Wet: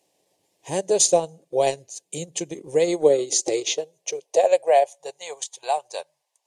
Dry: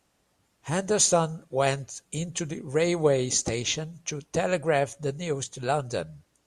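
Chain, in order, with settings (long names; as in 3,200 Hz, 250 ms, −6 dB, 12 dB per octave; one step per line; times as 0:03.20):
phaser with its sweep stopped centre 560 Hz, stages 4
high-pass filter sweep 230 Hz → 920 Hz, 0:02.83–0:05.28
transient designer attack 0 dB, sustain −8 dB
level +4 dB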